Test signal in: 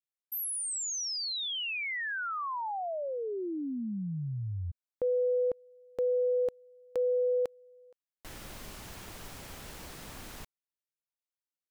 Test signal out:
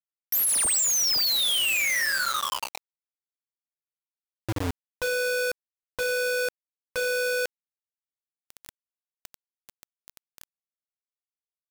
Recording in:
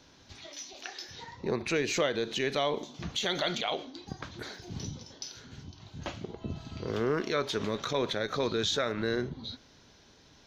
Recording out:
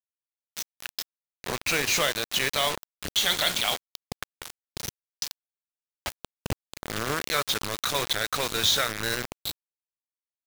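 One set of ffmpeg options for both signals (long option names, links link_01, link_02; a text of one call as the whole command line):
ffmpeg -i in.wav -af "equalizer=frequency=320:width_type=o:width=2.4:gain=-13,aeval=exprs='val(0)+0.000631*sin(2*PI*560*n/s)':channel_layout=same,bandreject=frequency=118:width_type=h:width=4,bandreject=frequency=236:width_type=h:width=4,bandreject=frequency=354:width_type=h:width=4,bandreject=frequency=472:width_type=h:width=4,bandreject=frequency=590:width_type=h:width=4,bandreject=frequency=708:width_type=h:width=4,bandreject=frequency=826:width_type=h:width=4,bandreject=frequency=944:width_type=h:width=4,bandreject=frequency=1062:width_type=h:width=4,bandreject=frequency=1180:width_type=h:width=4,bandreject=frequency=1298:width_type=h:width=4,bandreject=frequency=1416:width_type=h:width=4,bandreject=frequency=1534:width_type=h:width=4,bandreject=frequency=1652:width_type=h:width=4,bandreject=frequency=1770:width_type=h:width=4,bandreject=frequency=1888:width_type=h:width=4,bandreject=frequency=2006:width_type=h:width=4,bandreject=frequency=2124:width_type=h:width=4,bandreject=frequency=2242:width_type=h:width=4,bandreject=frequency=2360:width_type=h:width=4,bandreject=frequency=2478:width_type=h:width=4,bandreject=frequency=2596:width_type=h:width=4,bandreject=frequency=2714:width_type=h:width=4,bandreject=frequency=2832:width_type=h:width=4,bandreject=frequency=2950:width_type=h:width=4,bandreject=frequency=3068:width_type=h:width=4,bandreject=frequency=3186:width_type=h:width=4,bandreject=frequency=3304:width_type=h:width=4,bandreject=frequency=3422:width_type=h:width=4,bandreject=frequency=3540:width_type=h:width=4,bandreject=frequency=3658:width_type=h:width=4,bandreject=frequency=3776:width_type=h:width=4,bandreject=frequency=3894:width_type=h:width=4,bandreject=frequency=4012:width_type=h:width=4,bandreject=frequency=4130:width_type=h:width=4,bandreject=frequency=4248:width_type=h:width=4,bandreject=frequency=4366:width_type=h:width=4,bandreject=frequency=4484:width_type=h:width=4,acrusher=bits=5:mix=0:aa=0.000001,volume=9dB" out.wav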